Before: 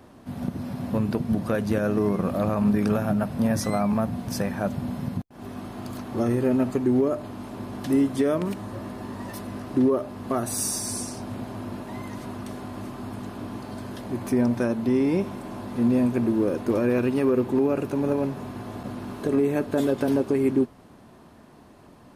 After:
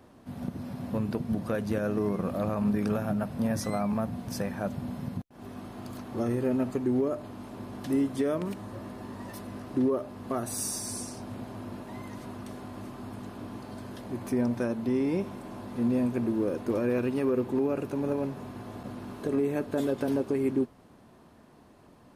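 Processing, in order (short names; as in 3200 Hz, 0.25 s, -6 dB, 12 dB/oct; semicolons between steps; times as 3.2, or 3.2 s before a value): bell 490 Hz +2 dB 0.21 oct; gain -5.5 dB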